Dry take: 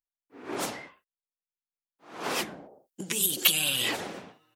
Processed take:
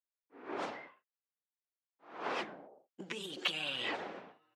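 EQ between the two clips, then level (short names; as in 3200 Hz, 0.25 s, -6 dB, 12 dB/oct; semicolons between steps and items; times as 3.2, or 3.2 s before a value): HPF 680 Hz 6 dB/oct; tape spacing loss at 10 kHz 35 dB; +1.0 dB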